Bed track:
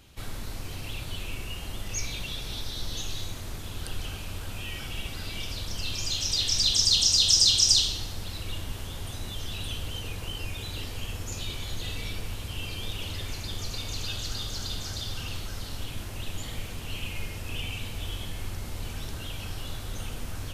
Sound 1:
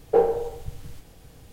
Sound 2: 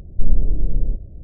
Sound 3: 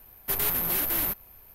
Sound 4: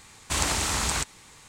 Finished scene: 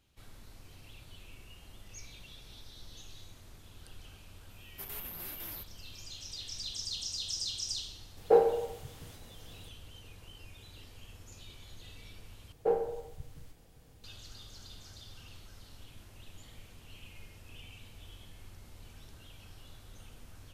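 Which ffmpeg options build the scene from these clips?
-filter_complex "[1:a]asplit=2[a][b];[0:a]volume=-16.5dB[c];[a]highpass=f=250:p=1[d];[c]asplit=2[e][f];[e]atrim=end=12.524[g];[b]atrim=end=1.52,asetpts=PTS-STARTPTS,volume=-10dB[h];[f]atrim=start=14.036[i];[3:a]atrim=end=1.54,asetpts=PTS-STARTPTS,volume=-16.5dB,afade=t=in:d=0.004:c=hsin,afade=t=out:st=1.536:d=0.004:c=hsin,adelay=4500[j];[d]atrim=end=1.52,asetpts=PTS-STARTPTS,volume=-2.5dB,afade=t=in:d=0.004:c=hsin,afade=t=out:st=1.516:d=0.004:c=hsin,adelay=8170[k];[g][h]acrossfade=d=0.004:c1=hsin:c2=hsin[l];[l][i]acrossfade=d=0.004:c1=hsin:c2=hsin[m];[m][j][k]amix=inputs=3:normalize=0"

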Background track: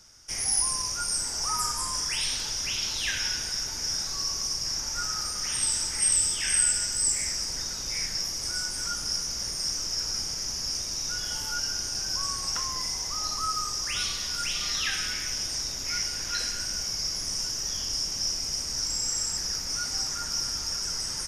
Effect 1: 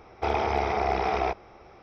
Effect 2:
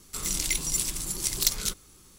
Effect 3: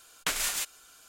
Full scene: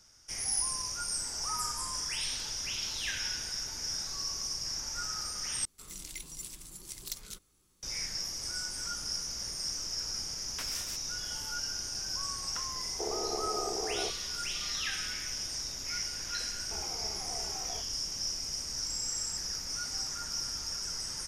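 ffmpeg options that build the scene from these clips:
-filter_complex "[3:a]asplit=2[a][b];[1:a]asplit=2[c][d];[0:a]volume=-6dB[e];[a]acompressor=threshold=-40dB:ratio=6:attack=3.2:release=140:knee=1:detection=peak[f];[c]bandpass=f=400:t=q:w=2.2:csg=0[g];[d]asplit=2[h][i];[i]adelay=3.3,afreqshift=-2.7[j];[h][j]amix=inputs=2:normalize=1[k];[e]asplit=2[l][m];[l]atrim=end=5.654[n];[2:a]atrim=end=2.18,asetpts=PTS-STARTPTS,volume=-15.5dB[o];[m]atrim=start=7.826[p];[f]atrim=end=1.08,asetpts=PTS-STARTPTS,volume=-17.5dB,afade=t=in:d=0.004:c=hsin,afade=t=out:st=1.076:d=0.004:c=hsin,adelay=2470[q];[b]atrim=end=1.08,asetpts=PTS-STARTPTS,volume=-13dB,afade=t=in:d=0.004:c=hsin,afade=t=out:st=1.076:d=0.004:c=hsin,adelay=10320[r];[g]atrim=end=1.82,asetpts=PTS-STARTPTS,volume=-4.5dB,afade=t=in:d=0.004:c=hsin,afade=t=out:st=1.816:d=0.004:c=hsin,adelay=12770[s];[k]atrim=end=1.82,asetpts=PTS-STARTPTS,volume=-17dB,afade=t=in:d=0.004:c=hsin,afade=t=out:st=1.816:d=0.004:c=hsin,adelay=16480[t];[n][o]acrossfade=d=0.004:c1=hsin:c2=hsin[u];[u][p]acrossfade=d=0.004:c1=hsin:c2=hsin[v];[v][q][r][s][t]amix=inputs=5:normalize=0"

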